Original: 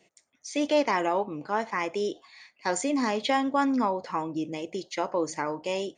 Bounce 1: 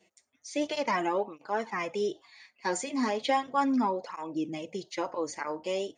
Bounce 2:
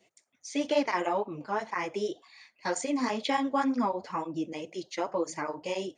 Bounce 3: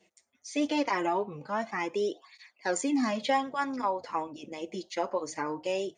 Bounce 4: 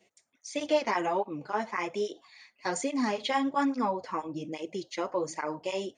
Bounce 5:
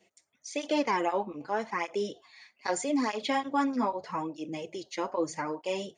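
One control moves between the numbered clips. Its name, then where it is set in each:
cancelling through-zero flanger, nulls at: 0.36 Hz, 2 Hz, 0.21 Hz, 1.2 Hz, 0.8 Hz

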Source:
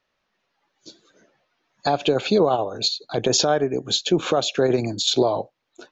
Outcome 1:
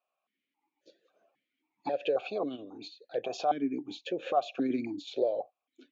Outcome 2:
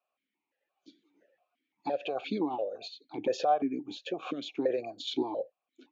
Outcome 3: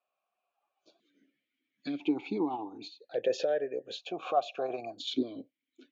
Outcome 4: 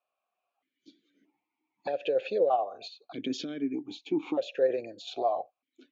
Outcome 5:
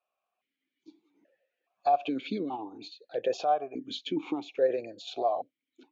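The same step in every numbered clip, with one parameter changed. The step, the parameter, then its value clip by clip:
stepped vowel filter, rate: 3.7 Hz, 5.8 Hz, 1 Hz, 1.6 Hz, 2.4 Hz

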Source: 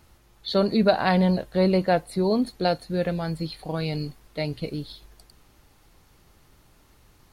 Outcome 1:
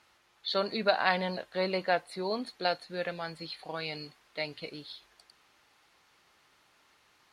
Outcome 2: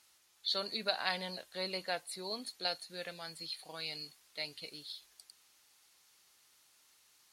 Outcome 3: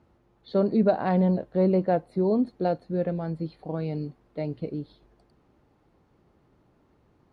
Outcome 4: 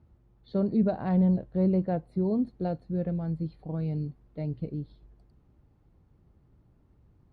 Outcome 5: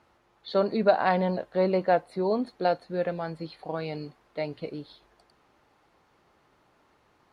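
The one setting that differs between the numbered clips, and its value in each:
band-pass filter, frequency: 2.2 kHz, 7.1 kHz, 310 Hz, 110 Hz, 830 Hz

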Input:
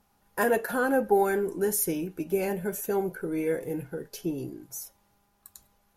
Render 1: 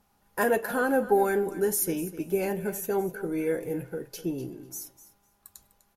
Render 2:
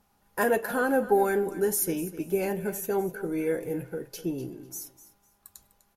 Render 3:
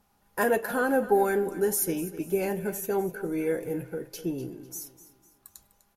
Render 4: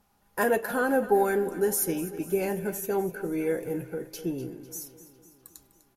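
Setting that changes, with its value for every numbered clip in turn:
feedback delay, feedback: 15%, 23%, 41%, 61%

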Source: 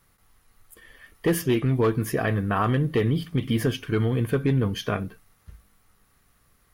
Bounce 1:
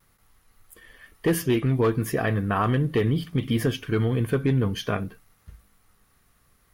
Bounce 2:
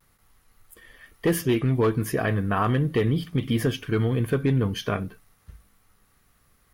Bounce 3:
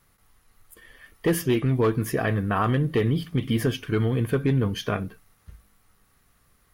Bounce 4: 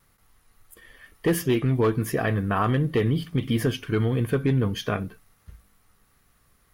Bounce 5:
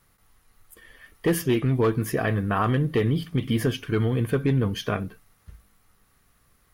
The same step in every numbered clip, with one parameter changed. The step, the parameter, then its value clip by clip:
vibrato, rate: 0.61 Hz, 0.35 Hz, 7.3 Hz, 1.5 Hz, 13 Hz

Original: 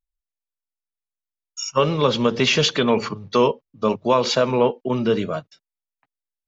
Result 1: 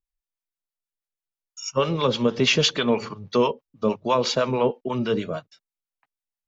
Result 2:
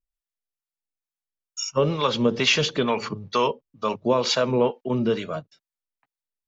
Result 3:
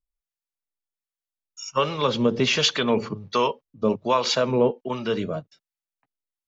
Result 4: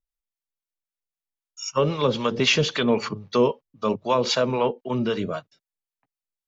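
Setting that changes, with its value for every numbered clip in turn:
harmonic tremolo, rate: 6.2 Hz, 2.2 Hz, 1.3 Hz, 3.8 Hz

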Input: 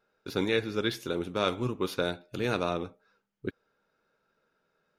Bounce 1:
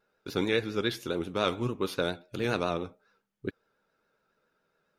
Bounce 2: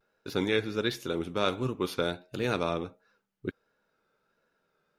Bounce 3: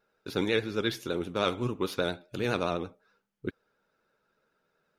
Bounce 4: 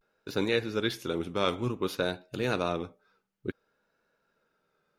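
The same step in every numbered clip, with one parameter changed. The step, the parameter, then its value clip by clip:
vibrato, rate: 7.2 Hz, 1.4 Hz, 12 Hz, 0.56 Hz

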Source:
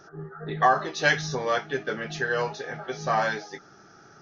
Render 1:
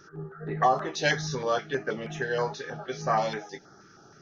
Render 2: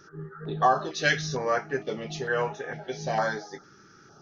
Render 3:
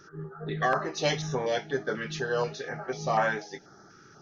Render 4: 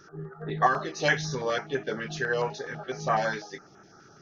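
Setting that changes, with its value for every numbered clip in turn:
step-sequenced notch, rate: 6.3 Hz, 2.2 Hz, 4.1 Hz, 12 Hz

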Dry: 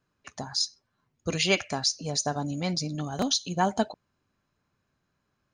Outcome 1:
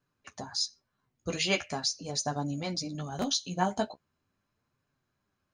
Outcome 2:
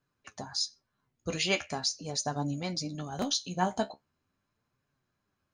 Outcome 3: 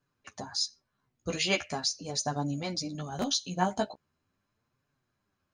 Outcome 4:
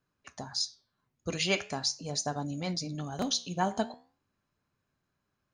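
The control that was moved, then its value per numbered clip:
flange, regen: -23%, +47%, +7%, -80%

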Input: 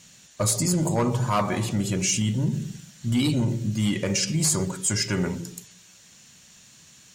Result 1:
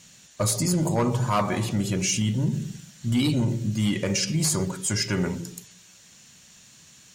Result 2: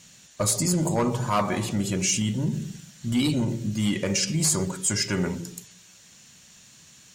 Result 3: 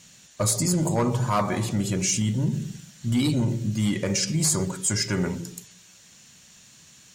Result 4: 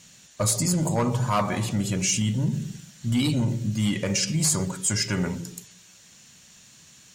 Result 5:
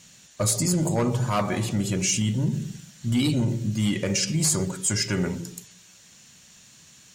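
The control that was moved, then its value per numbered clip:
dynamic bell, frequency: 7.7 kHz, 120 Hz, 2.8 kHz, 360 Hz, 1 kHz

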